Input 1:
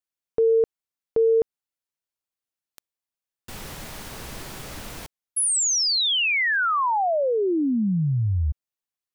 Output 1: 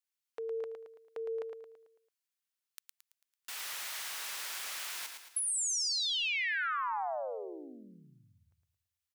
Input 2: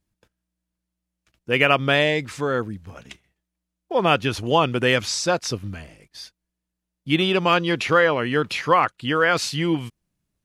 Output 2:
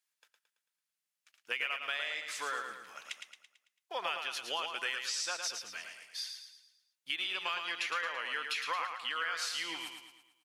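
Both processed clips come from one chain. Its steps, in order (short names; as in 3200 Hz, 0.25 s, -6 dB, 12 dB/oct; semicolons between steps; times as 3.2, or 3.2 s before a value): HPF 1400 Hz 12 dB/oct; compressor 6:1, threshold -34 dBFS; feedback echo 0.111 s, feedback 47%, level -6 dB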